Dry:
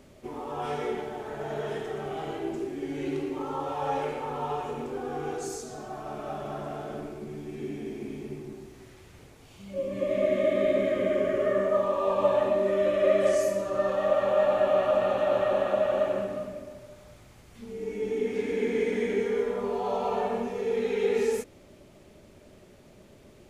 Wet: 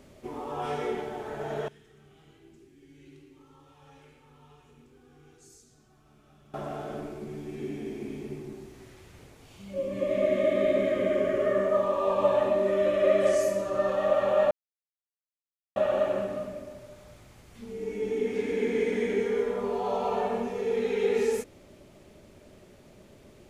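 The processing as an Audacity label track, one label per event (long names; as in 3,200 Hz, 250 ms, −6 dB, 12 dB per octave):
1.680000	6.540000	guitar amp tone stack bass-middle-treble 6-0-2
14.510000	15.760000	silence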